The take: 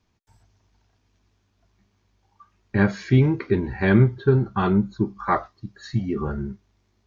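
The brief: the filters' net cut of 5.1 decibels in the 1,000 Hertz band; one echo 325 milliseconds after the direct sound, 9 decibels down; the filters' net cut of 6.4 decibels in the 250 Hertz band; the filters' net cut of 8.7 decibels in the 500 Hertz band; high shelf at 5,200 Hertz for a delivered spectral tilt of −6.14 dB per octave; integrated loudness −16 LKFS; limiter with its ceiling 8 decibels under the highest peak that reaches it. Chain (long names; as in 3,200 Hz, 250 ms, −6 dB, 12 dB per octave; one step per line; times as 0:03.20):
parametric band 250 Hz −7 dB
parametric band 500 Hz −8.5 dB
parametric band 1,000 Hz −3.5 dB
high-shelf EQ 5,200 Hz −8 dB
brickwall limiter −18.5 dBFS
single-tap delay 325 ms −9 dB
level +14 dB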